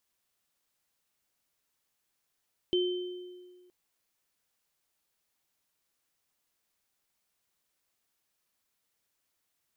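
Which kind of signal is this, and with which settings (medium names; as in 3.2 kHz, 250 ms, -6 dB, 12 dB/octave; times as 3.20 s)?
sine partials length 0.97 s, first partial 360 Hz, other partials 3.09 kHz, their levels -6 dB, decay 1.69 s, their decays 1.13 s, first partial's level -23.5 dB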